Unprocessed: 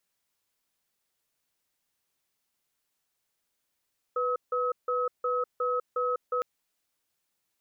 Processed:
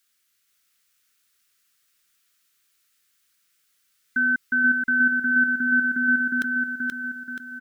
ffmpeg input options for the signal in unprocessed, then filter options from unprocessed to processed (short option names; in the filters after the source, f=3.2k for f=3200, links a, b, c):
-f lavfi -i "aevalsrc='0.0398*(sin(2*PI*495*t)+sin(2*PI*1280*t))*clip(min(mod(t,0.36),0.2-mod(t,0.36))/0.005,0,1)':d=2.26:s=44100"
-af "afftfilt=real='real(if(lt(b,960),b+48*(1-2*mod(floor(b/48),2)),b),0)':imag='imag(if(lt(b,960),b+48*(1-2*mod(floor(b/48),2)),b),0)':win_size=2048:overlap=0.75,firequalizer=gain_entry='entry(410,0);entry(840,-10);entry(1300,10)':delay=0.05:min_phase=1,aecho=1:1:479|958|1437|1916|2395|2874:0.668|0.321|0.154|0.0739|0.0355|0.017"